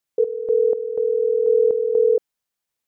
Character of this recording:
sample-and-hold tremolo 4.1 Hz, depth 75%

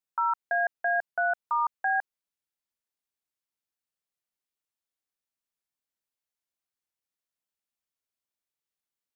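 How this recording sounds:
background noise floor −92 dBFS
spectral slope −0.5 dB per octave

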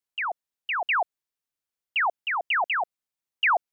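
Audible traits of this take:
background noise floor −90 dBFS
spectral slope −3.0 dB per octave

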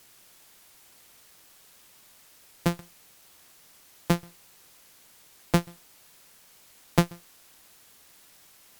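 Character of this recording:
a buzz of ramps at a fixed pitch in blocks of 256 samples
tremolo triangle 5.6 Hz, depth 85%
a quantiser's noise floor 10 bits, dither triangular
Opus

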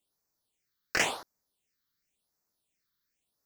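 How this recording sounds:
phaser sweep stages 6, 0.93 Hz, lowest notch 670–3,100 Hz

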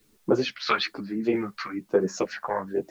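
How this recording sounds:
phaser sweep stages 2, 1.1 Hz, lowest notch 290–2,900 Hz
a quantiser's noise floor 12 bits, dither triangular
tremolo saw down 1.5 Hz, depth 35%
a shimmering, thickened sound

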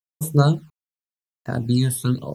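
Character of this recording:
a quantiser's noise floor 10 bits, dither none
phaser sweep stages 12, 0.91 Hz, lowest notch 410–4,200 Hz

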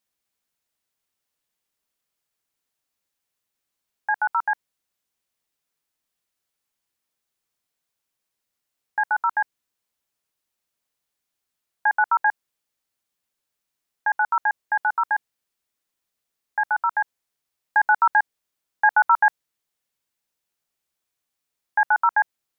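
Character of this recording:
background noise floor −82 dBFS
spectral slope +11.0 dB per octave

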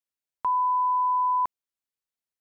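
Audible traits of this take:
background noise floor −92 dBFS
spectral slope −2.5 dB per octave

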